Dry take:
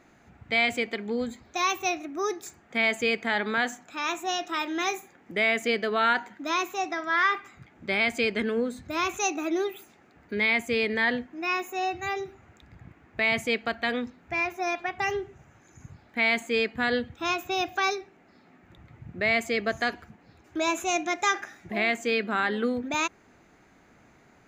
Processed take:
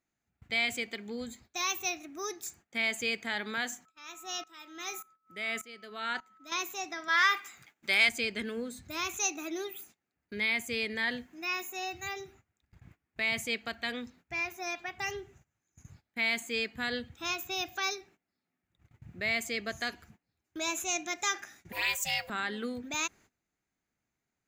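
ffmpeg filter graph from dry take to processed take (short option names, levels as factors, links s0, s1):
-filter_complex "[0:a]asettb=1/sr,asplit=3[s0][s1][s2];[s0]atrim=end=3.854[s3];[s1]atrim=start=3.85:end=6.52,asetpts=PTS-STARTPTS,afade=t=in:d=0.004:c=qsin,afade=t=out:st=2.666:d=0.004:c=qsin,aeval=exprs='val(0)+0.0158*sin(2*PI*1300*n/s)':c=same,aeval=exprs='val(0)*pow(10,-19*if(lt(mod(-1.7*n/s,1),2*abs(-1.7)/1000),1-mod(-1.7*n/s,1)/(2*abs(-1.7)/1000),(mod(-1.7*n/s,1)-2*abs(-1.7)/1000)/(1-2*abs(-1.7)/1000))/20)':c=same[s4];[s2]atrim=start=6.516[s5];[s3][s4]acrossfade=d=0.004:c1=hsin:c2=qsin[s6];[s6][s5]acrossfade=d=0.004:c1=qsin:c2=hsin,asettb=1/sr,asplit=3[s7][s8][s9];[s7]atrim=end=7.084[s10];[s8]atrim=start=7.08:end=8.09,asetpts=PTS-STARTPTS,afade=t=in:d=0.004:c=qsin,afade=t=out:st=1.006:d=0.004:c=qsin,highpass=f=750:p=1,highshelf=f=8000:g=5.5,acontrast=81[s11];[s9]atrim=start=8.086[s12];[s10][s11]acrossfade=d=0.004:c1=hsin:c2=qsin[s13];[s13][s12]acrossfade=d=0.004:c1=qsin:c2=hsin,asettb=1/sr,asplit=3[s14][s15][s16];[s14]atrim=end=11.034[s17];[s15]atrim=start=11.03:end=12.08,asetpts=PTS-STARTPTS,afade=t=in:d=0.004:c=qsin,afade=t=out:st=1.046:d=0.004:c=qsin,acrossover=split=4900[s18][s19];[s19]acompressor=threshold=0.00355:ratio=4:attack=1:release=60[s20];[s18][s20]amix=inputs=2:normalize=0,highshelf=f=5900:g=6.5[s21];[s16]atrim=start=12.076[s22];[s17][s21]acrossfade=d=0.004:c1=hsin:c2=qsin[s23];[s23][s22]acrossfade=d=0.004:c1=qsin:c2=hsin,asettb=1/sr,asplit=3[s24][s25][s26];[s24]atrim=end=21.724[s27];[s25]atrim=start=21.72:end=22.3,asetpts=PTS-STARTPTS,afade=t=in:d=0.004:c=qsin,afade=t=out:st=0.576:d=0.004:c=qsin,aeval=exprs='val(0)*sin(2*PI*310*n/s)':c=same,aemphasis=mode=production:type=bsi,aecho=1:1:4.2:0.76,atrim=end_sample=25578[s28];[s26]atrim=start=22.296[s29];[s27][s28]acrossfade=d=0.004:c1=hsin:c2=qsin[s30];[s30][s29]acrossfade=d=0.004:c1=qsin:c2=hsin,aemphasis=mode=production:type=cd,agate=range=0.0891:threshold=0.00355:ratio=16:detection=peak,equalizer=f=590:w=0.33:g=-6.5,volume=0.631"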